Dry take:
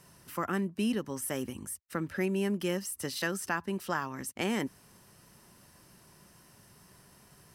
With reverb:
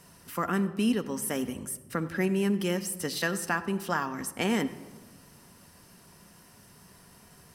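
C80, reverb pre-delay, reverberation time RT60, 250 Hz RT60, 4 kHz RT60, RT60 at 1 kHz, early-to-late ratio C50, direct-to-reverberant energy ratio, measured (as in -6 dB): 15.0 dB, 4 ms, 1.4 s, 1.9 s, 0.80 s, 1.3 s, 14.0 dB, 9.0 dB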